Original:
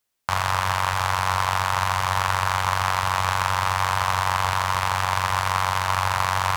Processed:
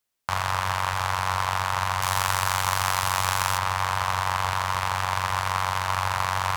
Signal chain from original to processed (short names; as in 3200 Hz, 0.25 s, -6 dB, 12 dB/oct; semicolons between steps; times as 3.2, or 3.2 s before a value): 2.02–3.58 high shelf 5000 Hz +11.5 dB; gain -3 dB